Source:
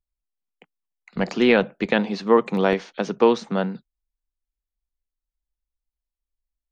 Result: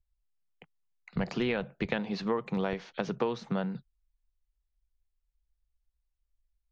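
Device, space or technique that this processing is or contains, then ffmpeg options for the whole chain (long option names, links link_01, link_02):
jukebox: -af "lowpass=5800,lowshelf=frequency=170:width_type=q:width=1.5:gain=10,acompressor=threshold=-25dB:ratio=5,volume=-2.5dB"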